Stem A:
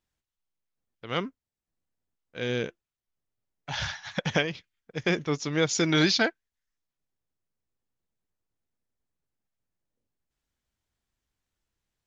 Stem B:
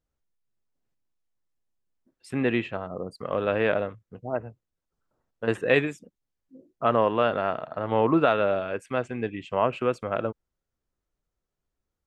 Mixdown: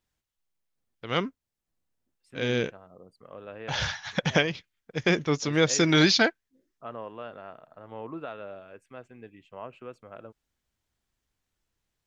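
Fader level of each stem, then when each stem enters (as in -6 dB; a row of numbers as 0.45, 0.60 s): +2.5, -17.0 dB; 0.00, 0.00 s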